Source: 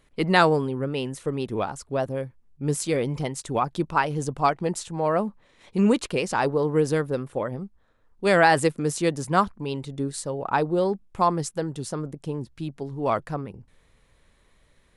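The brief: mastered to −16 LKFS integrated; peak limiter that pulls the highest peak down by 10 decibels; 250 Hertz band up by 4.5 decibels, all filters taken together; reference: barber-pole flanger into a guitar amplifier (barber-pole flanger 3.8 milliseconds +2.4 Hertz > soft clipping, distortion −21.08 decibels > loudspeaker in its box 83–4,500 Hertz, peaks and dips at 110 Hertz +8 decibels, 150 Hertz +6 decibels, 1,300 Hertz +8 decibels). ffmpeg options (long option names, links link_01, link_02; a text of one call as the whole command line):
ffmpeg -i in.wav -filter_complex "[0:a]equalizer=frequency=250:width_type=o:gain=4.5,alimiter=limit=-14.5dB:level=0:latency=1,asplit=2[link_01][link_02];[link_02]adelay=3.8,afreqshift=2.4[link_03];[link_01][link_03]amix=inputs=2:normalize=1,asoftclip=threshold=-17.5dB,highpass=83,equalizer=frequency=110:width_type=q:width=4:gain=8,equalizer=frequency=150:width_type=q:width=4:gain=6,equalizer=frequency=1300:width_type=q:width=4:gain=8,lowpass=frequency=4500:width=0.5412,lowpass=frequency=4500:width=1.3066,volume=13dB" out.wav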